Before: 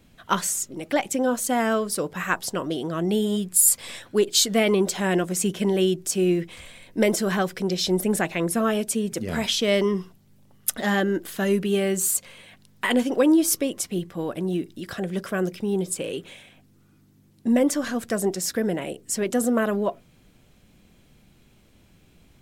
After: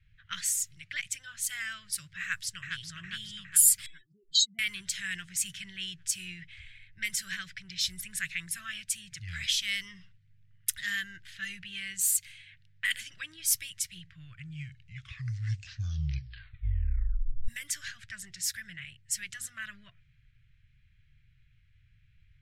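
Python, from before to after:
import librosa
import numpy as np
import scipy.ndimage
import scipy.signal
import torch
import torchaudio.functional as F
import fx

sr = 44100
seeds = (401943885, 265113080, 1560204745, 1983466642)

y = fx.echo_throw(x, sr, start_s=2.21, length_s=0.68, ms=410, feedback_pct=60, wet_db=-4.5)
y = fx.spec_expand(y, sr, power=3.4, at=(3.86, 4.59))
y = fx.edit(y, sr, fx.tape_stop(start_s=13.98, length_s=3.5), tone=tone)
y = scipy.signal.sosfilt(scipy.signal.ellip(3, 1.0, 40, [120.0, 1800.0], 'bandstop', fs=sr, output='sos'), y)
y = fx.env_lowpass(y, sr, base_hz=1800.0, full_db=-25.5)
y = y * 10.0 ** (-2.5 / 20.0)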